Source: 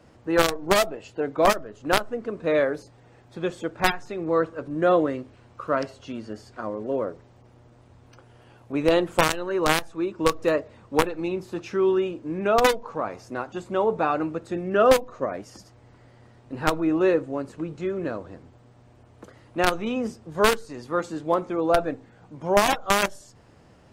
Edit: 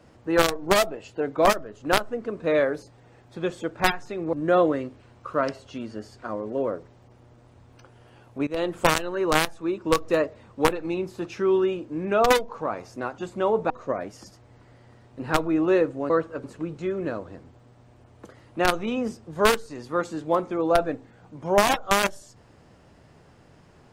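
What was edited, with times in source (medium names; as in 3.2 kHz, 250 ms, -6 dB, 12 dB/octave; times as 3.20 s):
4.33–4.67 s: move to 17.43 s
8.81–9.16 s: fade in, from -18 dB
14.04–15.03 s: delete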